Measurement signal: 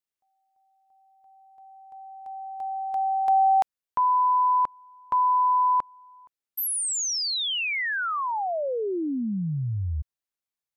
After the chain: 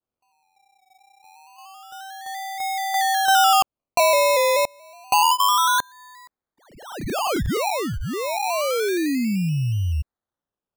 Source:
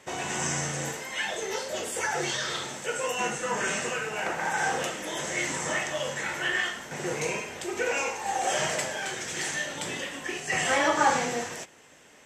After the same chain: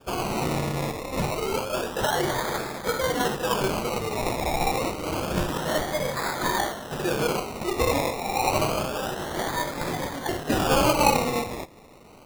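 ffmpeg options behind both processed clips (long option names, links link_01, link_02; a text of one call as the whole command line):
ffmpeg -i in.wav -af "adynamicequalizer=threshold=0.0141:dfrequency=1500:dqfactor=0.98:tfrequency=1500:tqfactor=0.98:attack=5:release=100:ratio=0.375:range=3.5:mode=cutabove:tftype=bell,lowpass=frequency=5500:width=0.5412,lowpass=frequency=5500:width=1.3066,acrusher=samples=22:mix=1:aa=0.000001:lfo=1:lforange=13.2:lforate=0.28,volume=5.5dB" out.wav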